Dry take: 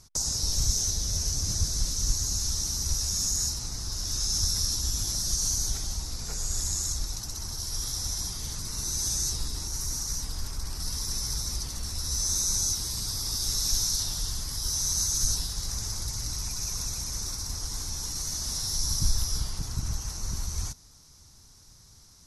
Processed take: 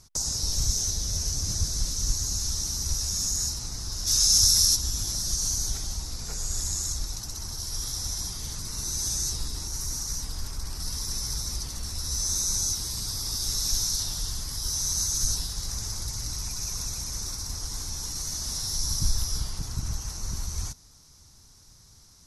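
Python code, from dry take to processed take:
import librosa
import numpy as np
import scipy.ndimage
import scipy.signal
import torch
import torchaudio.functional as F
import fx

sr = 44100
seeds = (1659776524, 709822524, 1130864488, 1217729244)

y = fx.high_shelf(x, sr, hz=fx.line((4.06, 2200.0), (4.75, 3400.0)), db=10.5, at=(4.06, 4.75), fade=0.02)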